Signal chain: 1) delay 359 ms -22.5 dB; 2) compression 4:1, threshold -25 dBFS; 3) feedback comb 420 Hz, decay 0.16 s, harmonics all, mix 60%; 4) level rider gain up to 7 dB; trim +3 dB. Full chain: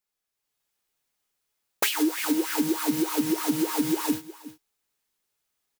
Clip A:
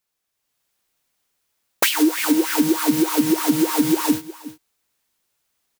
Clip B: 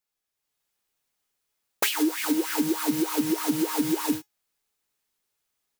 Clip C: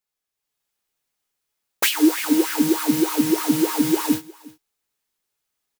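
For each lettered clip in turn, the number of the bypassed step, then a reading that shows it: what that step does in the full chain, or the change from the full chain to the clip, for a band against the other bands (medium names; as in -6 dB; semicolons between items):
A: 3, loudness change +7.0 LU; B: 1, momentary loudness spread change -3 LU; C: 2, mean gain reduction 5.0 dB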